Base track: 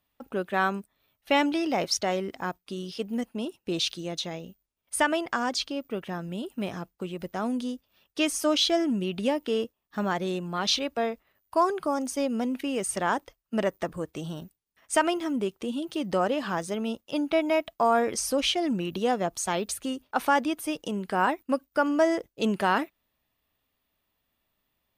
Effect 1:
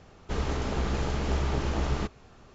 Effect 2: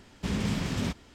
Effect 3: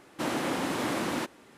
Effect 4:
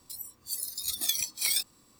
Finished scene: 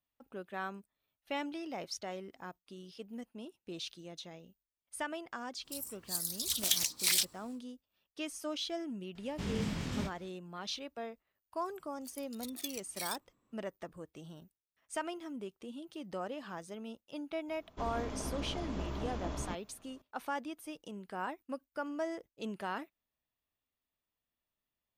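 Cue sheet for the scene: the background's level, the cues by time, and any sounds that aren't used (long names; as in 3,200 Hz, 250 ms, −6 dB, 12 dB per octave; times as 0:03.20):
base track −14.5 dB
0:05.62: mix in 4 −0.5 dB, fades 0.10 s + highs frequency-modulated by the lows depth 0.82 ms
0:09.15: mix in 2 −8 dB + double-tracking delay 24 ms −6.5 dB
0:11.55: mix in 4 −12 dB + adaptive Wiener filter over 9 samples
0:17.48: mix in 1 −13 dB + hollow resonant body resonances 270/620/1,000/3,400 Hz, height 9 dB, ringing for 35 ms
not used: 3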